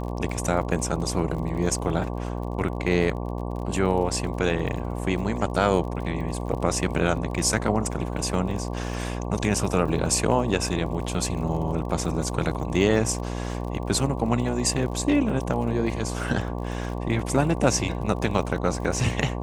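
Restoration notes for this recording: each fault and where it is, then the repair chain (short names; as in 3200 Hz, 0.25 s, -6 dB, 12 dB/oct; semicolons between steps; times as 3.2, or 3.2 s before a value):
buzz 60 Hz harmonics 19 -30 dBFS
crackle 42/s -34 dBFS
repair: de-click; de-hum 60 Hz, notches 19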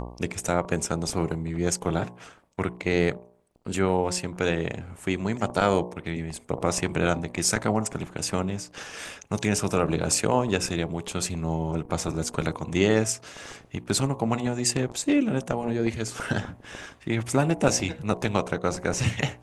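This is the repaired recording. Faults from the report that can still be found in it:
none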